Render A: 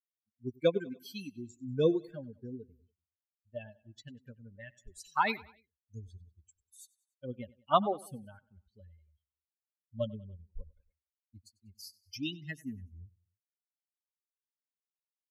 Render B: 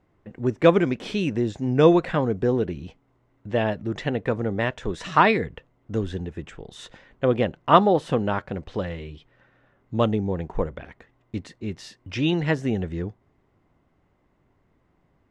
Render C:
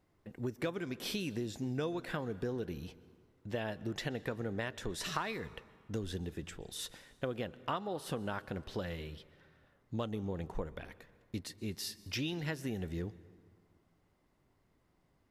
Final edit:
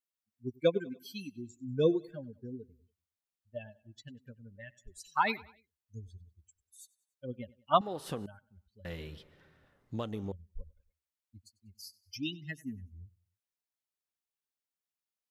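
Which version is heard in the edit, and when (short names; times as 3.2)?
A
7.81–8.26 from C
8.85–10.32 from C
not used: B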